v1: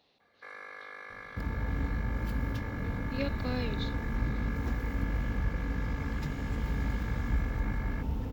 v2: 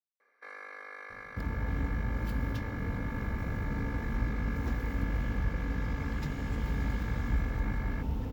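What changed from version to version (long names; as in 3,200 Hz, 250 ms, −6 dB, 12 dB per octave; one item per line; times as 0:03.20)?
speech: muted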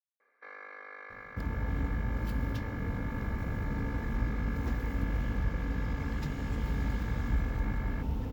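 first sound: add high-frequency loss of the air 170 metres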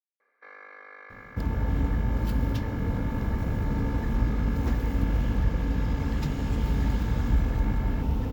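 second sound +6.5 dB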